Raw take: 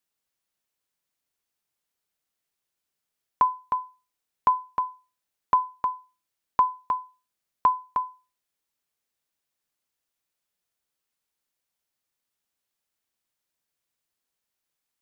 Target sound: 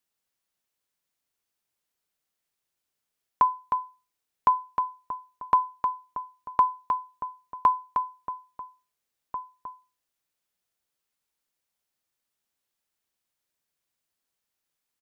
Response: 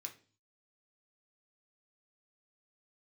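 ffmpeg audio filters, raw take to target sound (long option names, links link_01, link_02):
-filter_complex "[0:a]asplit=2[link_01][link_02];[link_02]adelay=1691,volume=-10dB,highshelf=frequency=4000:gain=-38[link_03];[link_01][link_03]amix=inputs=2:normalize=0"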